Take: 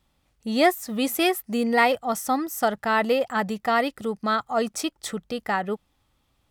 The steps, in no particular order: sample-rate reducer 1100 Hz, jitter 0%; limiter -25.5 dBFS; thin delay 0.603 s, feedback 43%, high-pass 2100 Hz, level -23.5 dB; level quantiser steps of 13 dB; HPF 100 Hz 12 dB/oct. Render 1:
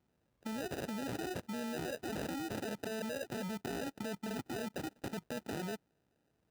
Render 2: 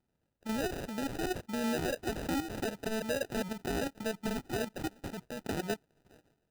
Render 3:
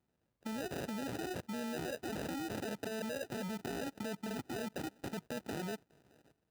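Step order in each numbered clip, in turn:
limiter > thin delay > sample-rate reducer > HPF > level quantiser; level quantiser > thin delay > limiter > HPF > sample-rate reducer; thin delay > limiter > sample-rate reducer > level quantiser > HPF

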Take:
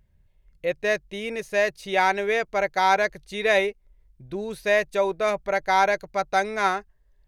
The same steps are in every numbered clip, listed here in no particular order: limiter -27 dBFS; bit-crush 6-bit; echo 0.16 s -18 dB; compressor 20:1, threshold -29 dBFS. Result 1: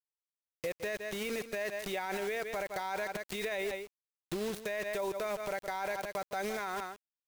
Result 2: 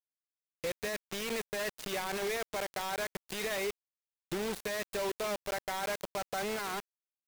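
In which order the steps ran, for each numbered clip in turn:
bit-crush > echo > limiter > compressor; limiter > echo > bit-crush > compressor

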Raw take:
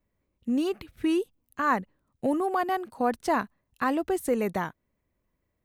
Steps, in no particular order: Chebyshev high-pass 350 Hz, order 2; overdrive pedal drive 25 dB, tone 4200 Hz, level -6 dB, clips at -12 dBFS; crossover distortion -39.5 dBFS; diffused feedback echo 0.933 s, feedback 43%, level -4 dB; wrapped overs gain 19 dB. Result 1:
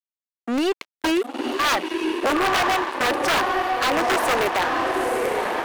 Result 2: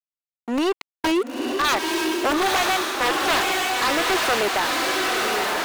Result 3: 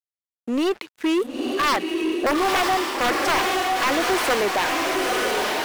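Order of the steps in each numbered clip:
diffused feedback echo > wrapped overs > crossover distortion > Chebyshev high-pass > overdrive pedal; wrapped overs > Chebyshev high-pass > crossover distortion > diffused feedback echo > overdrive pedal; Chebyshev high-pass > wrapped overs > diffused feedback echo > overdrive pedal > crossover distortion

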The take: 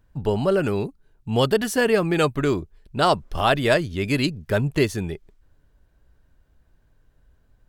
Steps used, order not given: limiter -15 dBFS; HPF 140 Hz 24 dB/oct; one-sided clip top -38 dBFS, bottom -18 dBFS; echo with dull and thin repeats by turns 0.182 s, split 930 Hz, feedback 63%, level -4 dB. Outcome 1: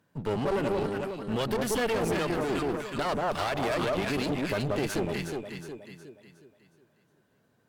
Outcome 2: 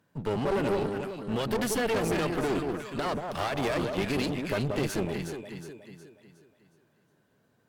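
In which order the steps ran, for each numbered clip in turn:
echo with dull and thin repeats by turns > limiter > HPF > one-sided clip; HPF > limiter > echo with dull and thin repeats by turns > one-sided clip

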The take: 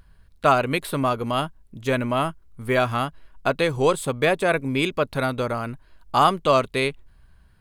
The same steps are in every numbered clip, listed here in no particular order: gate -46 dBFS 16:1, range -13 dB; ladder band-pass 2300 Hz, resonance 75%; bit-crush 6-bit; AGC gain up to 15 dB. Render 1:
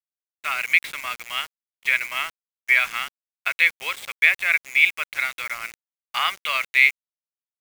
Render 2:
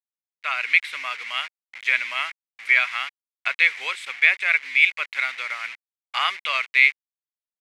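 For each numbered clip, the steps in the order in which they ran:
ladder band-pass > AGC > bit-crush > gate; bit-crush > gate > ladder band-pass > AGC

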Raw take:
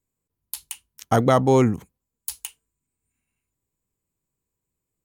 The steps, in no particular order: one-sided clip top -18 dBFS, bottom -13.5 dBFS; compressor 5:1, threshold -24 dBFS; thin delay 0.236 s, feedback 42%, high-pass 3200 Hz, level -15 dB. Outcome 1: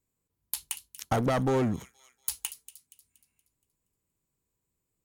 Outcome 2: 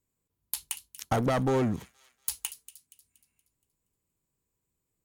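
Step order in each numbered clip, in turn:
thin delay > one-sided clip > compressor; one-sided clip > thin delay > compressor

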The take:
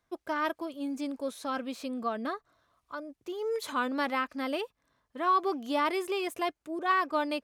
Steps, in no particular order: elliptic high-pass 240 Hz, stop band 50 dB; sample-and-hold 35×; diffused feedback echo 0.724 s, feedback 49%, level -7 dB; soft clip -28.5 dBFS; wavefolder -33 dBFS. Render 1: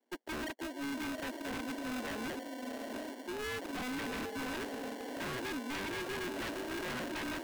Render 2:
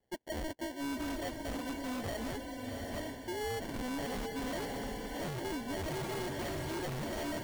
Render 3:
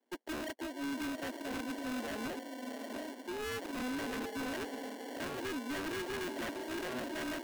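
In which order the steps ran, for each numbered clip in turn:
diffused feedback echo > sample-and-hold > elliptic high-pass > wavefolder > soft clip; elliptic high-pass > sample-and-hold > diffused feedback echo > soft clip > wavefolder; soft clip > diffused feedback echo > sample-and-hold > elliptic high-pass > wavefolder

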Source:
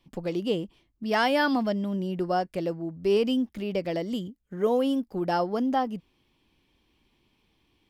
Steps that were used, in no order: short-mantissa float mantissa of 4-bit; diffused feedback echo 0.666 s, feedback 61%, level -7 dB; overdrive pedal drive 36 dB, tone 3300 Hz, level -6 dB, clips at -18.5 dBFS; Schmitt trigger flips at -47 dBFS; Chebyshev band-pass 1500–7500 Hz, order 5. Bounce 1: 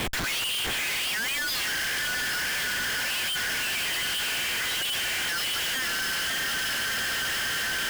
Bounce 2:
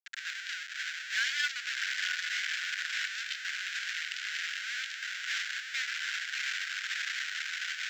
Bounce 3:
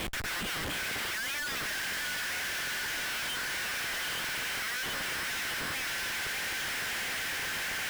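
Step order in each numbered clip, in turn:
diffused feedback echo > short-mantissa float > Chebyshev band-pass > overdrive pedal > Schmitt trigger; diffused feedback echo > Schmitt trigger > overdrive pedal > Chebyshev band-pass > short-mantissa float; diffused feedback echo > overdrive pedal > Chebyshev band-pass > Schmitt trigger > short-mantissa float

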